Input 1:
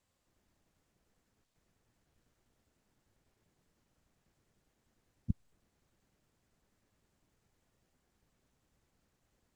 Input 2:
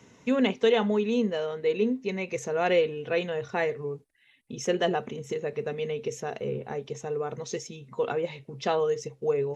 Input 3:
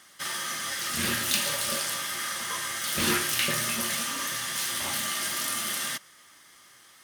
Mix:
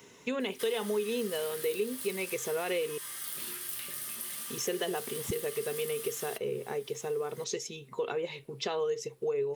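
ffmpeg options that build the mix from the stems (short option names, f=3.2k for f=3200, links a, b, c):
-filter_complex "[0:a]lowpass=2.3k,volume=-3dB[a];[1:a]alimiter=limit=-17.5dB:level=0:latency=1:release=120,volume=-8.5dB,asplit=3[b][c][d];[b]atrim=end=2.98,asetpts=PTS-STARTPTS,afade=t=out:st=2.976:d=0.004:c=hsin[e];[c]atrim=start=2.98:end=4.09,asetpts=PTS-STARTPTS,volume=0[f];[d]atrim=start=4.09,asetpts=PTS-STARTPTS,afade=t=in:d=0.004:c=hsin[g];[e][f][g]concat=n=3:v=0:a=1[h];[2:a]acrossover=split=230|1500[i][j][k];[i]acompressor=threshold=-46dB:ratio=4[l];[j]acompressor=threshold=-46dB:ratio=4[m];[k]acompressor=threshold=-41dB:ratio=4[n];[l][m][n]amix=inputs=3:normalize=0,adelay=400,volume=-16.5dB[o];[a][h][o]amix=inputs=3:normalize=0,equalizer=f=160:t=o:w=0.67:g=3,equalizer=f=400:t=o:w=0.67:g=11,equalizer=f=1k:t=o:w=0.67:g=4,equalizer=f=6.3k:t=o:w=0.67:g=-8,crystalizer=i=10:c=0,acompressor=threshold=-33dB:ratio=2"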